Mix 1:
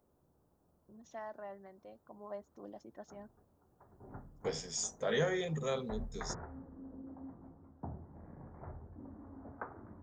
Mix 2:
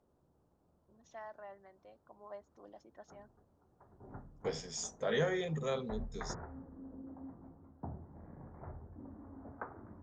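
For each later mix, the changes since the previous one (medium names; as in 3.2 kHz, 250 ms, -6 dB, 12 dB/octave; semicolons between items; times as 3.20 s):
first voice: add high-pass 710 Hz 6 dB/octave; master: add distance through air 53 m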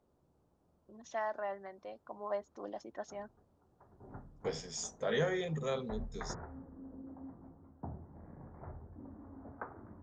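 first voice +11.5 dB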